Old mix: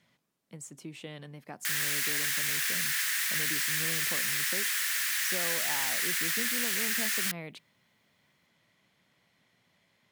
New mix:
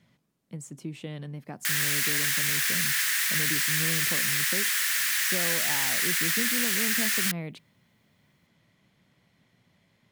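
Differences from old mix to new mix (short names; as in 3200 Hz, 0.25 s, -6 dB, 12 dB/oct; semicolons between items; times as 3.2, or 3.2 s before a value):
speech: add low shelf 310 Hz +11.5 dB; background +4.0 dB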